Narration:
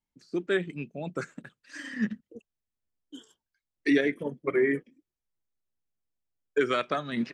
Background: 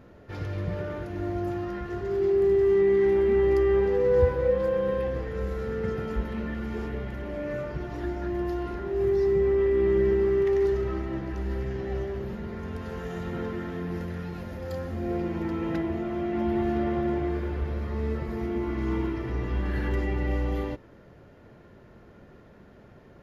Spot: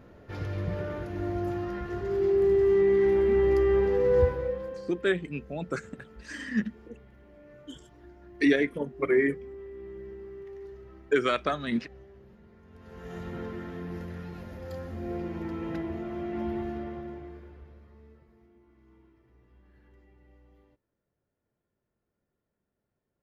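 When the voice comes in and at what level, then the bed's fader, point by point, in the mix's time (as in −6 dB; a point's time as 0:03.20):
4.55 s, +1.0 dB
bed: 0:04.21 −1 dB
0:05.04 −20 dB
0:12.66 −20 dB
0:13.14 −5 dB
0:16.45 −5 dB
0:18.59 −32 dB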